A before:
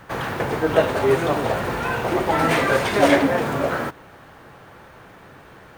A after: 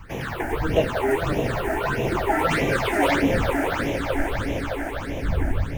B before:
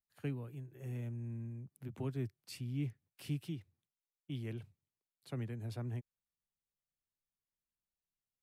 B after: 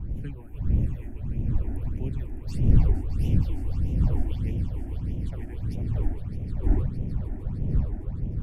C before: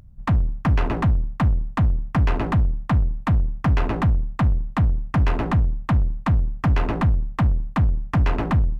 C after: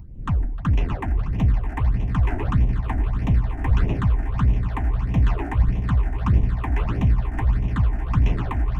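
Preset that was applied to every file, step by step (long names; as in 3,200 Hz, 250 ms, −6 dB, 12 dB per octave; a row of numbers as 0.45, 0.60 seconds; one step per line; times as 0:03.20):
wind on the microphone 110 Hz −29 dBFS
echo that builds up and dies away 153 ms, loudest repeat 5, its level −13 dB
all-pass phaser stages 8, 1.6 Hz, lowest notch 140–1,400 Hz
normalise the peak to −6 dBFS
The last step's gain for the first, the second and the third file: −0.5, +3.0, −2.0 decibels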